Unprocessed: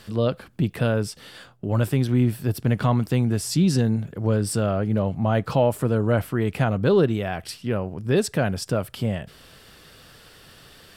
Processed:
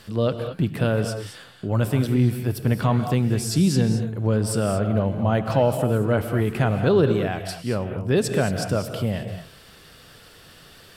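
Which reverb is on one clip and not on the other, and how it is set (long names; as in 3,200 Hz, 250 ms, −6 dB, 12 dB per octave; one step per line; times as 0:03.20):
reverb whose tail is shaped and stops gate 250 ms rising, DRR 7 dB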